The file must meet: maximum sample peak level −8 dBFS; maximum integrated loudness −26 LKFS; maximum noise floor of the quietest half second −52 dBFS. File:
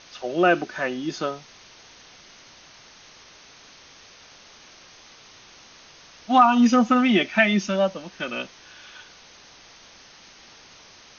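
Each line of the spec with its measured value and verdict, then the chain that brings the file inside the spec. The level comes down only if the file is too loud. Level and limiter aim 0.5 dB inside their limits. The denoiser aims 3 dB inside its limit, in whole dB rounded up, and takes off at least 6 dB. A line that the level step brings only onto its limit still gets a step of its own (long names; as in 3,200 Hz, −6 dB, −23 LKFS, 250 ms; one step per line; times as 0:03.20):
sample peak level −5.5 dBFS: out of spec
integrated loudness −21.0 LKFS: out of spec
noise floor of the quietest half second −49 dBFS: out of spec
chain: level −5.5 dB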